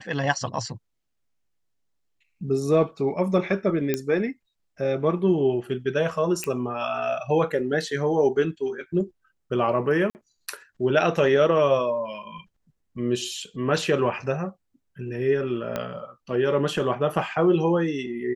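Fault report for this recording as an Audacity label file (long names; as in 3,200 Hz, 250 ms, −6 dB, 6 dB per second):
3.940000	3.940000	click −10 dBFS
6.440000	6.440000	click −13 dBFS
10.100000	10.150000	drop-out 49 ms
15.760000	15.760000	click −13 dBFS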